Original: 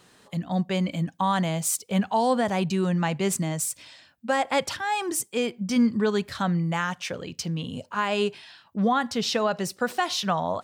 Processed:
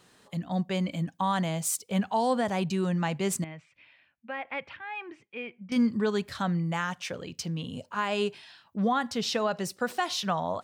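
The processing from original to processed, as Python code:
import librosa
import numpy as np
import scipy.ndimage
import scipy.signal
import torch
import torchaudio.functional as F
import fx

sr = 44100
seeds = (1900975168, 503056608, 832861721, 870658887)

y = fx.ladder_lowpass(x, sr, hz=2700.0, resonance_pct=60, at=(3.44, 5.72))
y = y * 10.0 ** (-3.5 / 20.0)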